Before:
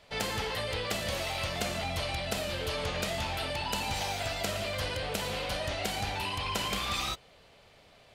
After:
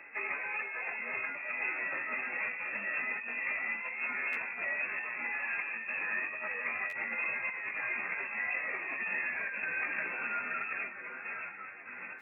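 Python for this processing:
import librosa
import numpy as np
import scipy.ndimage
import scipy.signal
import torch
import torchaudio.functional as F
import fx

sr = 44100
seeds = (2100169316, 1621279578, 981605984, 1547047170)

p1 = np.clip(10.0 ** (28.5 / 20.0) * x, -1.0, 1.0) / 10.0 ** (28.5 / 20.0)
p2 = x + F.gain(torch.from_numpy(p1), -8.0).numpy()
p3 = fx.echo_heads(p2, sr, ms=164, heads='first and third', feedback_pct=71, wet_db=-18.0)
p4 = fx.chopper(p3, sr, hz=2.4, depth_pct=65, duty_pct=40)
p5 = fx.air_absorb(p4, sr, metres=170.0)
p6 = fx.echo_thinned(p5, sr, ms=646, feedback_pct=61, hz=280.0, wet_db=-15.5)
p7 = fx.freq_invert(p6, sr, carrier_hz=2600)
p8 = fx.stretch_vocoder_free(p7, sr, factor=1.5)
p9 = scipy.signal.sosfilt(scipy.signal.butter(2, 180.0, 'highpass', fs=sr, output='sos'), p8)
p10 = fx.low_shelf(p9, sr, hz=380.0, db=-10.0)
p11 = fx.over_compress(p10, sr, threshold_db=-42.0, ratio=-1.0)
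p12 = fx.buffer_glitch(p11, sr, at_s=(4.32, 6.89), block=512, repeats=2)
y = F.gain(torch.from_numpy(p12), 6.0).numpy()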